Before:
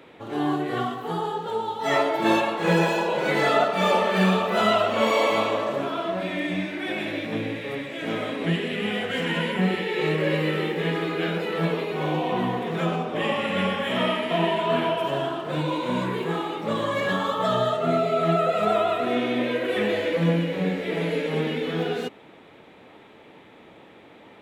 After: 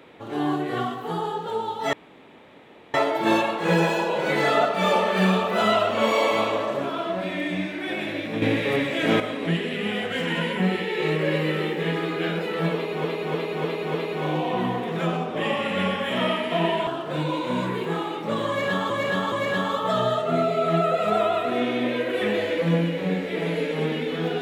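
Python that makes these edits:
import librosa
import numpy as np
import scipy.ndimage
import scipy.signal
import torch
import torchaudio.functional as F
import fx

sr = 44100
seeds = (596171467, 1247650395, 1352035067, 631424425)

y = fx.edit(x, sr, fx.insert_room_tone(at_s=1.93, length_s=1.01),
    fx.clip_gain(start_s=7.41, length_s=0.78, db=8.0),
    fx.repeat(start_s=11.73, length_s=0.3, count=5),
    fx.cut(start_s=14.66, length_s=0.6),
    fx.repeat(start_s=16.87, length_s=0.42, count=3), tone=tone)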